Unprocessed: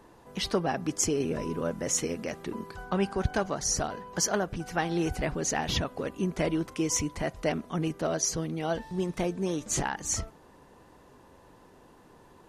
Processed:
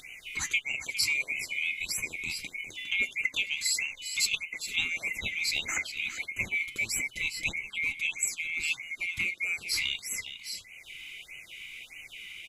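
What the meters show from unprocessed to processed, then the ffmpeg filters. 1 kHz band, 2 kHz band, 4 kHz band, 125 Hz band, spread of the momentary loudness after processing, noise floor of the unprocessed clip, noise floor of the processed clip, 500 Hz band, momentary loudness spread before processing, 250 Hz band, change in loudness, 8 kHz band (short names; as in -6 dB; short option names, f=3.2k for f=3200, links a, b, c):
-18.5 dB, +10.0 dB, +5.0 dB, -17.5 dB, 15 LU, -56 dBFS, -52 dBFS, -24.5 dB, 6 LU, -22.0 dB, 0.0 dB, -3.0 dB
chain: -filter_complex "[0:a]afftfilt=real='real(if(lt(b,920),b+92*(1-2*mod(floor(b/92),2)),b),0)':imag='imag(if(lt(b,920),b+92*(1-2*mod(floor(b/92),2)),b),0)':win_size=2048:overlap=0.75,equalizer=f=910:w=0.9:g=-10,asplit=2[a][b];[b]aecho=0:1:407:0.282[c];[a][c]amix=inputs=2:normalize=0,acompressor=mode=upward:threshold=-32dB:ratio=2.5,asplit=2[d][e];[e]adelay=87,lowpass=f=1.6k:p=1,volume=-22.5dB,asplit=2[f][g];[g]adelay=87,lowpass=f=1.6k:p=1,volume=0.23[h];[f][h]amix=inputs=2:normalize=0[i];[d][i]amix=inputs=2:normalize=0,flanger=delay=3.5:depth=9.9:regen=75:speed=0.25:shape=triangular,afftfilt=real='re*(1-between(b*sr/1024,520*pow(4300/520,0.5+0.5*sin(2*PI*1.6*pts/sr))/1.41,520*pow(4300/520,0.5+0.5*sin(2*PI*1.6*pts/sr))*1.41))':imag='im*(1-between(b*sr/1024,520*pow(4300/520,0.5+0.5*sin(2*PI*1.6*pts/sr))/1.41,520*pow(4300/520,0.5+0.5*sin(2*PI*1.6*pts/sr))*1.41))':win_size=1024:overlap=0.75,volume=5dB"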